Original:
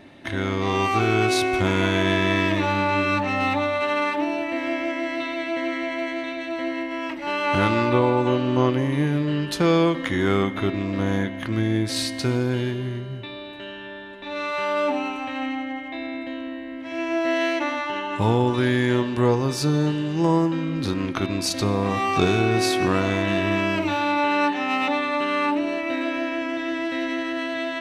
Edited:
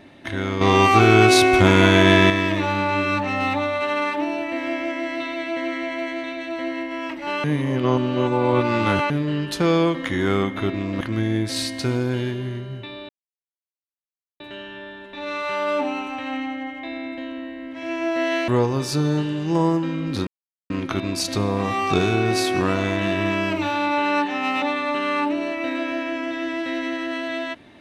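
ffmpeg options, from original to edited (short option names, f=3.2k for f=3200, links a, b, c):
-filter_complex "[0:a]asplit=9[a][b][c][d][e][f][g][h][i];[a]atrim=end=0.612[j];[b]atrim=start=0.608:end=2.302,asetpts=PTS-STARTPTS,volume=7dB[k];[c]atrim=start=2.298:end=7.442[l];[d]atrim=start=7.438:end=9.102,asetpts=PTS-STARTPTS,areverse[m];[e]atrim=start=9.098:end=11.012[n];[f]atrim=start=11.408:end=13.49,asetpts=PTS-STARTPTS,afade=t=out:st=2.078:d=0.004:c=hsin,apad=pad_dur=1.31[o];[g]atrim=start=13.49:end=17.572,asetpts=PTS-STARTPTS,afade=t=in:d=0.004:c=hsin[p];[h]atrim=start=19.168:end=20.96,asetpts=PTS-STARTPTS,afade=t=out:st=1.788:d=0.004:c=hsin,apad=pad_dur=0.43[q];[i]atrim=start=20.96,asetpts=PTS-STARTPTS,afade=t=in:d=0.004:c=hsin[r];[j][k]acrossfade=d=0.004:c1=hsin:c2=hsin[s];[s][l]acrossfade=d=0.004:c1=hsin:c2=hsin[t];[t][m]acrossfade=d=0.004:c1=hsin:c2=hsin[u];[u][n]acrossfade=d=0.004:c1=hsin:c2=hsin[v];[o][p]concat=n=2:v=0:a=1[w];[v][w]acrossfade=d=0.004:c1=hsin:c2=hsin[x];[q][r]concat=n=2:v=0:a=1[y];[x][y]acrossfade=d=0.004:c1=hsin:c2=hsin"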